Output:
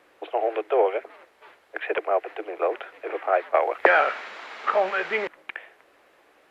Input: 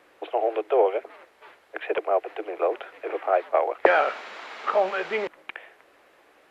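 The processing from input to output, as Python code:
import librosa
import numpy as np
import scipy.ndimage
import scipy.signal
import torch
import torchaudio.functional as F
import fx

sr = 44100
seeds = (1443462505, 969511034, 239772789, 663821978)

y = fx.dynamic_eq(x, sr, hz=1800.0, q=1.2, threshold_db=-41.0, ratio=4.0, max_db=6)
y = fx.band_squash(y, sr, depth_pct=40, at=(3.54, 4.04))
y = F.gain(torch.from_numpy(y), -1.0).numpy()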